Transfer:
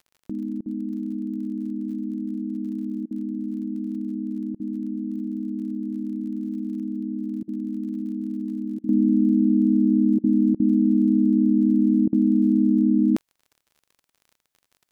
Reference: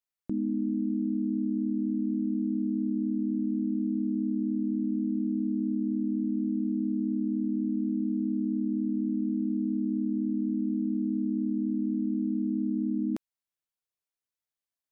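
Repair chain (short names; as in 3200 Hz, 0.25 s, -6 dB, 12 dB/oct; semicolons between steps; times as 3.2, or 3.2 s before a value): de-click; interpolate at 0.61/3.06/4.55/7.43/8.79/10.19/10.55/12.08, 47 ms; gain 0 dB, from 8.89 s -10.5 dB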